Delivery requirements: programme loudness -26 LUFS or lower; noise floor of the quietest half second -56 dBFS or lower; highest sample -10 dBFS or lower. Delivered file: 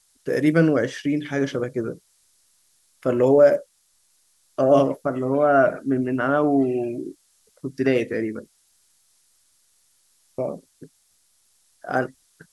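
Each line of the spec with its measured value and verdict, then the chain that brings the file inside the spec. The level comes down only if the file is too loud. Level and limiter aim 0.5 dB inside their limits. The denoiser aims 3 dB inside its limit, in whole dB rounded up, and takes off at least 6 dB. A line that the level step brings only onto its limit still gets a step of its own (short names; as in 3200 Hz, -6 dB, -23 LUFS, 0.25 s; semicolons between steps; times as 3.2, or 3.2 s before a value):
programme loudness -21.5 LUFS: fail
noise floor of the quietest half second -64 dBFS: OK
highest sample -5.5 dBFS: fail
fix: gain -5 dB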